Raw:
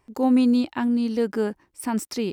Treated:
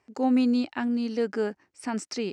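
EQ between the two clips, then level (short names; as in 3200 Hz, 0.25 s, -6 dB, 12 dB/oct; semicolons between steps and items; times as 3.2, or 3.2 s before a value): speaker cabinet 140–7300 Hz, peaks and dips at 150 Hz -9 dB, 220 Hz -4 dB, 330 Hz -6 dB, 520 Hz -3 dB, 1000 Hz -7 dB, 3500 Hz -6 dB; 0.0 dB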